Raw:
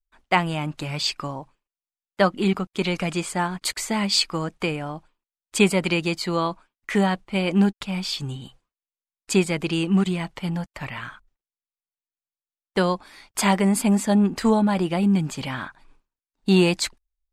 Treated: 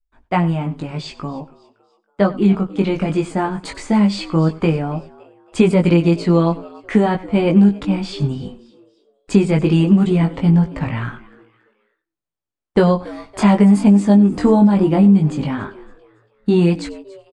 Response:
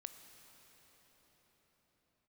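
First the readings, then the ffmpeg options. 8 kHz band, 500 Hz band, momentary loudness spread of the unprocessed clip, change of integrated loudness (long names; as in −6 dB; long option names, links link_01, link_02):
can't be measured, +6.5 dB, 13 LU, +7.0 dB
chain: -filter_complex "[0:a]highshelf=frequency=2300:gain=-10.5,dynaudnorm=framelen=920:gausssize=7:maxgain=11.5dB,aresample=22050,aresample=44100,asplit=2[link_01][link_02];[link_02]asplit=3[link_03][link_04][link_05];[link_03]adelay=281,afreqshift=100,volume=-22dB[link_06];[link_04]adelay=562,afreqshift=200,volume=-29.7dB[link_07];[link_05]adelay=843,afreqshift=300,volume=-37.5dB[link_08];[link_06][link_07][link_08]amix=inputs=3:normalize=0[link_09];[link_01][link_09]amix=inputs=2:normalize=0,flanger=delay=17.5:depth=2.5:speed=0.17,lowshelf=frequency=460:gain=9,acrossover=split=3200|6400[link_10][link_11][link_12];[link_10]acompressor=threshold=-12dB:ratio=4[link_13];[link_11]acompressor=threshold=-38dB:ratio=4[link_14];[link_12]acompressor=threshold=-44dB:ratio=4[link_15];[link_13][link_14][link_15]amix=inputs=3:normalize=0,asplit=2[link_16][link_17];[link_17]aecho=0:1:95:0.112[link_18];[link_16][link_18]amix=inputs=2:normalize=0,volume=3dB"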